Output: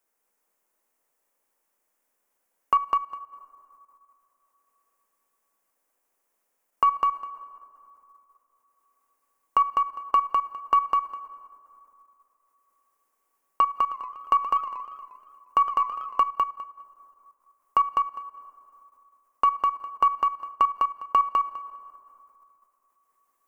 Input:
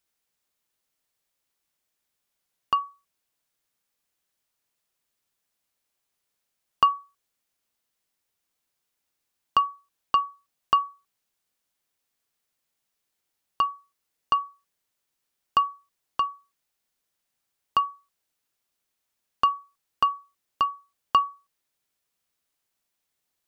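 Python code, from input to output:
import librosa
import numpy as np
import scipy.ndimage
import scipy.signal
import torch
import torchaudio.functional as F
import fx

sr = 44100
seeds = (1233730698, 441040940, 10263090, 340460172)

y = np.where(x < 0.0, 10.0 ** (-3.0 / 20.0) * x, x)
y = fx.bass_treble(y, sr, bass_db=-4, treble_db=5)
y = fx.rev_plate(y, sr, seeds[0], rt60_s=3.2, hf_ratio=0.45, predelay_ms=0, drr_db=18.5)
y = fx.level_steps(y, sr, step_db=13)
y = fx.graphic_eq(y, sr, hz=(125, 250, 500, 1000, 2000, 4000), db=(-7, 7, 8, 8, 4, -11))
y = fx.echo_feedback(y, sr, ms=203, feedback_pct=17, wet_db=-3.0)
y = fx.echo_warbled(y, sr, ms=118, feedback_pct=63, rate_hz=2.8, cents=194, wet_db=-13.5, at=(13.66, 16.31))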